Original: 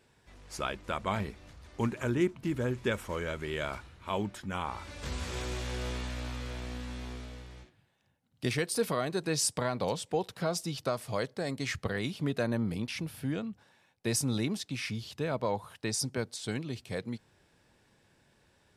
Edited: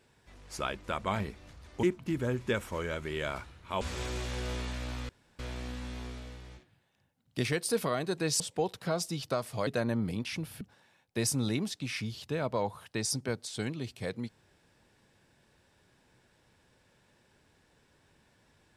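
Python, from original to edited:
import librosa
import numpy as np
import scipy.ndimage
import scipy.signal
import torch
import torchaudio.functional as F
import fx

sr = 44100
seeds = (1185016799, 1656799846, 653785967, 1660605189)

y = fx.edit(x, sr, fx.cut(start_s=1.83, length_s=0.37),
    fx.cut(start_s=4.18, length_s=0.99),
    fx.insert_room_tone(at_s=6.45, length_s=0.3),
    fx.cut(start_s=9.46, length_s=0.49),
    fx.cut(start_s=11.22, length_s=1.08),
    fx.cut(start_s=13.24, length_s=0.26), tone=tone)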